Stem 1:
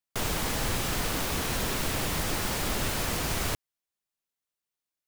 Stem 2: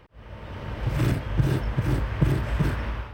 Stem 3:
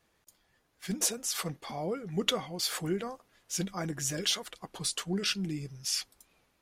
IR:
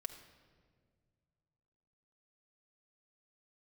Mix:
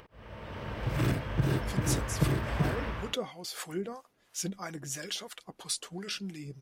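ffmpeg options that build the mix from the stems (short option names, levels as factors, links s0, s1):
-filter_complex "[1:a]acontrast=62,volume=0.316,asplit=2[s0][s1];[s1]volume=0.355[s2];[2:a]acrossover=split=740[s3][s4];[s3]aeval=exprs='val(0)*(1-0.7/2+0.7/2*cos(2*PI*3*n/s))':c=same[s5];[s4]aeval=exprs='val(0)*(1-0.7/2-0.7/2*cos(2*PI*3*n/s))':c=same[s6];[s5][s6]amix=inputs=2:normalize=0,adelay=850,volume=1.06[s7];[3:a]atrim=start_sample=2205[s8];[s2][s8]afir=irnorm=-1:irlink=0[s9];[s0][s7][s9]amix=inputs=3:normalize=0,lowshelf=f=78:g=-9.5,acompressor=mode=upward:threshold=0.00282:ratio=2.5"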